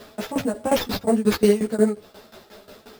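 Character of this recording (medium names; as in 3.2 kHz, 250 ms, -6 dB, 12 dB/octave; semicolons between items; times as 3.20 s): tremolo saw down 5.6 Hz, depth 90%; aliases and images of a low sample rate 8.7 kHz, jitter 0%; a shimmering, thickened sound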